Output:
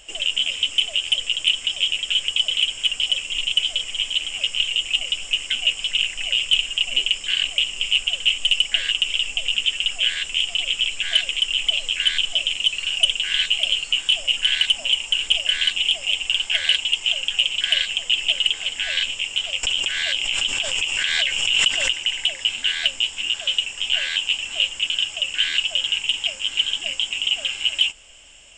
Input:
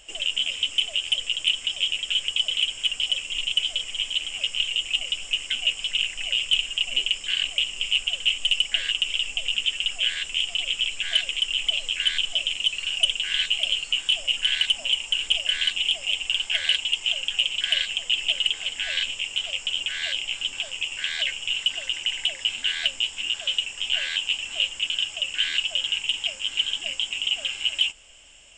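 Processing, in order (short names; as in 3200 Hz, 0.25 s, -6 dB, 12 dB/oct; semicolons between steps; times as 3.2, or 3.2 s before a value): 19.63–21.91 backwards sustainer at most 25 dB/s; gain +3.5 dB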